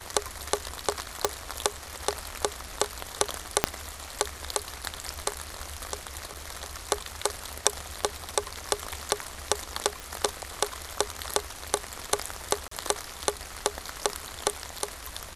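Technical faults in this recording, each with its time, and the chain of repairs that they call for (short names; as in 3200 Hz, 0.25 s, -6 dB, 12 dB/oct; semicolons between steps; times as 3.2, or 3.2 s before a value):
1.25 pop
3.64 pop -2 dBFS
6.34–6.35 gap 6.5 ms
10 pop
12.68–12.71 gap 34 ms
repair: de-click; interpolate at 6.34, 6.5 ms; interpolate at 12.68, 34 ms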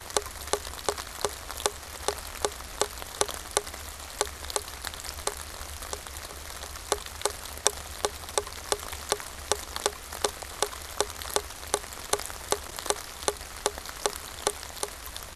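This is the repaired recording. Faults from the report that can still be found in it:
1.25 pop
3.64 pop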